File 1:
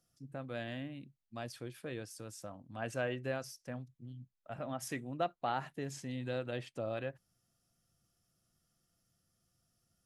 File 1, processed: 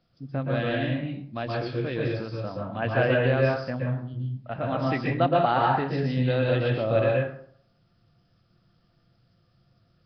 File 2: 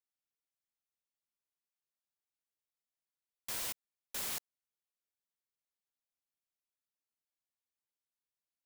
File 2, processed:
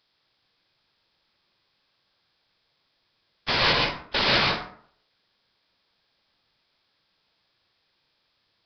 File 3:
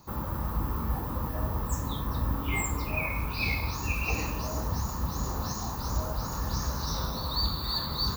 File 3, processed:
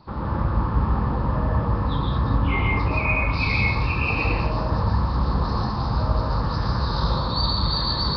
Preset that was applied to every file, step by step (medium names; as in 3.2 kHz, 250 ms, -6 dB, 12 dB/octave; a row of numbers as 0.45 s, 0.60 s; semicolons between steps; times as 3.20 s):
plate-style reverb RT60 0.57 s, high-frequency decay 0.6×, pre-delay 110 ms, DRR -2 dB; Nellymoser 22 kbps 11.025 kHz; peak normalisation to -9 dBFS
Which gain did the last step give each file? +11.0 dB, +22.0 dB, +4.5 dB